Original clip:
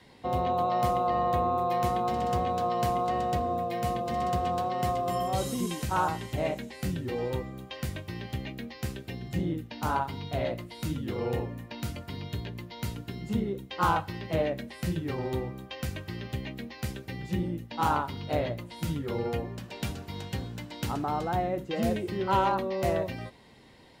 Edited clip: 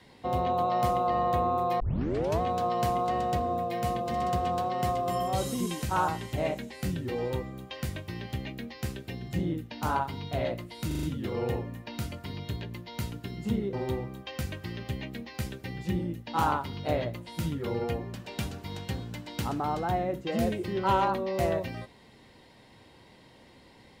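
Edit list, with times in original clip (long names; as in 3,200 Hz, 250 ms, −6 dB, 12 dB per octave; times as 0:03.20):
0:01.80: tape start 0.61 s
0:10.87: stutter 0.04 s, 5 plays
0:13.57–0:15.17: remove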